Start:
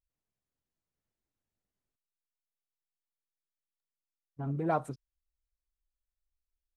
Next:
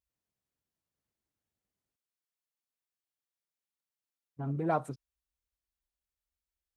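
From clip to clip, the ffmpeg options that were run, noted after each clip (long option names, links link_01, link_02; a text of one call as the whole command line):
ffmpeg -i in.wav -af "highpass=51" out.wav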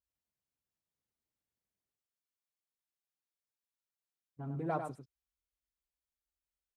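ffmpeg -i in.wav -filter_complex "[0:a]asplit=2[link_01][link_02];[link_02]adelay=99.13,volume=-7dB,highshelf=frequency=4000:gain=-2.23[link_03];[link_01][link_03]amix=inputs=2:normalize=0,volume=-6dB" out.wav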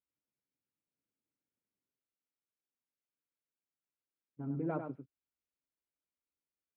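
ffmpeg -i in.wav -af "highpass=120,equalizer=frequency=280:width_type=q:width=4:gain=6,equalizer=frequency=740:width_type=q:width=4:gain=-9,equalizer=frequency=1100:width_type=q:width=4:gain=-7,equalizer=frequency=1800:width_type=q:width=4:gain=-9,lowpass=frequency=2300:width=0.5412,lowpass=frequency=2300:width=1.3066,volume=1dB" out.wav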